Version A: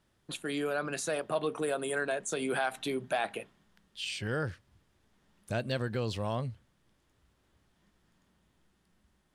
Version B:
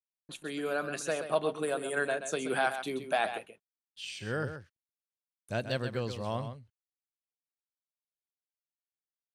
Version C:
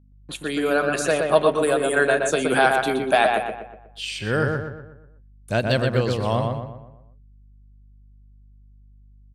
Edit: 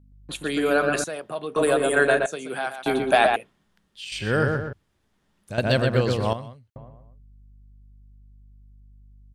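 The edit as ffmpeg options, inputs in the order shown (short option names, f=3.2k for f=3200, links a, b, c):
-filter_complex "[0:a]asplit=3[a][b][c];[1:a]asplit=2[d][e];[2:a]asplit=6[f][g][h][i][j][k];[f]atrim=end=1.042[l];[a]atrim=start=1.038:end=1.562[m];[g]atrim=start=1.558:end=2.262[n];[d]atrim=start=2.258:end=2.862[o];[h]atrim=start=2.858:end=3.362[p];[b]atrim=start=3.358:end=4.122[q];[i]atrim=start=4.118:end=4.732[r];[c]atrim=start=4.728:end=5.582[s];[j]atrim=start=5.578:end=6.332[t];[e]atrim=start=6.328:end=6.762[u];[k]atrim=start=6.758[v];[l][m]acrossfade=d=0.004:c1=hsin:c2=hsin[w];[w][n]acrossfade=d=0.004:c1=hsin:c2=hsin[x];[x][o]acrossfade=d=0.004:c1=hsin:c2=hsin[y];[y][p]acrossfade=d=0.004:c1=hsin:c2=hsin[z];[z][q]acrossfade=d=0.004:c1=hsin:c2=hsin[aa];[aa][r]acrossfade=d=0.004:c1=hsin:c2=hsin[ab];[ab][s]acrossfade=d=0.004:c1=hsin:c2=hsin[ac];[ac][t]acrossfade=d=0.004:c1=hsin:c2=hsin[ad];[ad][u]acrossfade=d=0.004:c1=hsin:c2=hsin[ae];[ae][v]acrossfade=d=0.004:c1=hsin:c2=hsin"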